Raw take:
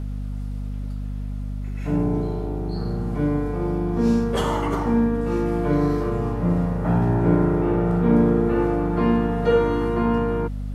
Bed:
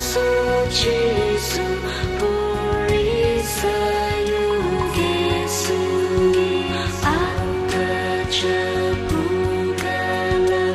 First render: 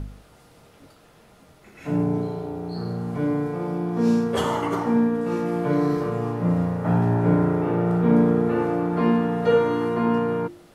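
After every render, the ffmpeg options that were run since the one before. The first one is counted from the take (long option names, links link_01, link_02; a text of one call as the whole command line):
ffmpeg -i in.wav -af "bandreject=frequency=50:width_type=h:width=4,bandreject=frequency=100:width_type=h:width=4,bandreject=frequency=150:width_type=h:width=4,bandreject=frequency=200:width_type=h:width=4,bandreject=frequency=250:width_type=h:width=4,bandreject=frequency=300:width_type=h:width=4,bandreject=frequency=350:width_type=h:width=4" out.wav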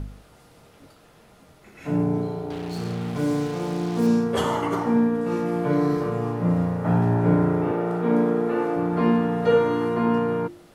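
ffmpeg -i in.wav -filter_complex "[0:a]asettb=1/sr,asplit=3[link_01][link_02][link_03];[link_01]atrim=end=2.504[link_04];[link_02]atrim=start=2.5:end=4.07,asetpts=PTS-STARTPTS,afade=type=in:duration=0.004:curve=qsin,afade=type=out:start_time=1.566:duration=0.004:curve=qsin,acrusher=bits=5:mix=0:aa=0.5[link_05];[link_03]atrim=start=4.066[link_06];[link_04][link_05]acrossfade=duration=0.004:curve1=hsin:curve2=qsin[link_07];[link_07][link_06]acrossfade=duration=0.004:curve1=qsin:curve2=hsin,asettb=1/sr,asplit=3[link_08][link_09][link_10];[link_08]atrim=end=7.714[link_11];[link_09]atrim=start=7.71:end=8.77,asetpts=PTS-STARTPTS,afade=type=in:duration=0.004:curve=qsin,afade=type=out:start_time=1.056:duration=0.004:curve=qsin,highpass=250[link_12];[link_10]atrim=start=8.766[link_13];[link_11][link_12]acrossfade=duration=0.004:curve1=hsin:curve2=qsin[link_14];[link_14][link_13]acrossfade=duration=0.004:curve1=qsin:curve2=hsin" out.wav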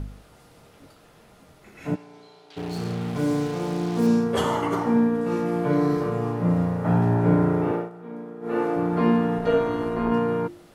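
ffmpeg -i in.wav -filter_complex "[0:a]asplit=3[link_01][link_02][link_03];[link_01]afade=type=out:start_time=1.94:duration=0.02[link_04];[link_02]bandpass=frequency=4100:width_type=q:width=1.2,afade=type=in:start_time=1.94:duration=0.02,afade=type=out:start_time=2.56:duration=0.02[link_05];[link_03]afade=type=in:start_time=2.56:duration=0.02[link_06];[link_04][link_05][link_06]amix=inputs=3:normalize=0,asettb=1/sr,asplit=3[link_07][link_08][link_09];[link_07]atrim=end=9.384[link_10];[link_08]atrim=start=9.38:end=10.12,asetpts=PTS-STARTPTS,afade=type=in:duration=0.004:curve=qsin,afade=type=out:start_time=0.736:duration=0.004:curve=qsin,tremolo=f=190:d=0.621[link_11];[link_09]atrim=start=10.116[link_12];[link_10][link_11]acrossfade=duration=0.004:curve1=hsin:curve2=qsin[link_13];[link_13][link_12]acrossfade=duration=0.004:curve1=qsin:curve2=hsin,asplit=3[link_14][link_15][link_16];[link_14]atrim=end=7.9,asetpts=PTS-STARTPTS,afade=type=out:start_time=7.75:duration=0.15:silence=0.149624[link_17];[link_15]atrim=start=7.9:end=8.41,asetpts=PTS-STARTPTS,volume=-16.5dB[link_18];[link_16]atrim=start=8.41,asetpts=PTS-STARTPTS,afade=type=in:duration=0.15:silence=0.149624[link_19];[link_17][link_18][link_19]concat=n=3:v=0:a=1" out.wav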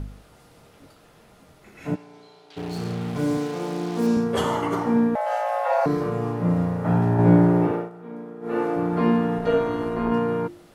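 ffmpeg -i in.wav -filter_complex "[0:a]asettb=1/sr,asplit=3[link_01][link_02][link_03];[link_01]atrim=end=3.374[link_04];[link_02]atrim=start=3.37:end=4.17,asetpts=PTS-STARTPTS,afade=type=in:duration=0.004:curve=qsin,afade=type=out:start_time=0.796:duration=0.004:curve=qsin,highpass=190[link_05];[link_03]atrim=start=4.166[link_06];[link_04][link_05]acrossfade=duration=0.004:curve1=hsin:curve2=qsin[link_07];[link_07][link_06]acrossfade=duration=0.004:curve1=qsin:curve2=hsin,asettb=1/sr,asplit=3[link_08][link_09][link_10];[link_08]atrim=end=5.154[link_11];[link_09]atrim=start=5.15:end=5.86,asetpts=PTS-STARTPTS,afade=type=in:duration=0.004:curve=qsin,afade=type=out:start_time=0.706:duration=0.004:curve=qsin,afreqshift=380[link_12];[link_10]atrim=start=5.856[link_13];[link_11][link_12]acrossfade=duration=0.004:curve1=hsin:curve2=qsin[link_14];[link_14][link_13]acrossfade=duration=0.004:curve1=qsin:curve2=hsin,asettb=1/sr,asplit=3[link_15][link_16][link_17];[link_15]atrim=end=7.174[link_18];[link_16]atrim=start=7.17:end=7.67,asetpts=PTS-STARTPTS,afade=type=in:duration=0.004:curve=qsin,afade=type=out:start_time=0.496:duration=0.004:curve=qsin,asplit=2[link_19][link_20];[link_20]adelay=17,volume=-2.5dB[link_21];[link_19][link_21]amix=inputs=2:normalize=0,atrim=end_sample=22050[link_22];[link_17]atrim=start=7.666[link_23];[link_18][link_22]acrossfade=duration=0.004:curve1=hsin:curve2=qsin[link_24];[link_24][link_23]acrossfade=duration=0.004:curve1=qsin:curve2=hsin" out.wav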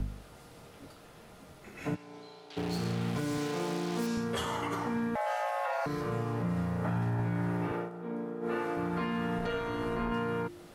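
ffmpeg -i in.wav -filter_complex "[0:a]acrossover=split=110|1200|1300[link_01][link_02][link_03][link_04];[link_02]acompressor=threshold=-31dB:ratio=6[link_05];[link_01][link_05][link_03][link_04]amix=inputs=4:normalize=0,alimiter=limit=-23.5dB:level=0:latency=1:release=212" out.wav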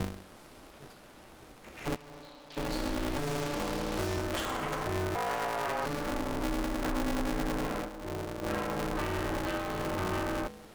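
ffmpeg -i in.wav -af "aeval=exprs='val(0)*sgn(sin(2*PI*140*n/s))':channel_layout=same" out.wav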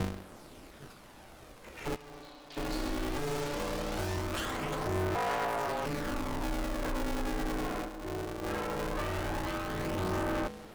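ffmpeg -i in.wav -af "asoftclip=type=tanh:threshold=-27.5dB,aphaser=in_gain=1:out_gain=1:delay=2.8:decay=0.29:speed=0.19:type=sinusoidal" out.wav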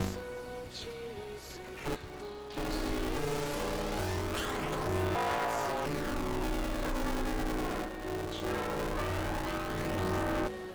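ffmpeg -i in.wav -i bed.wav -filter_complex "[1:a]volume=-24dB[link_01];[0:a][link_01]amix=inputs=2:normalize=0" out.wav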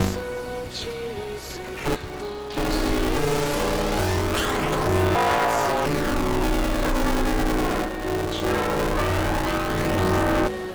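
ffmpeg -i in.wav -af "volume=11dB" out.wav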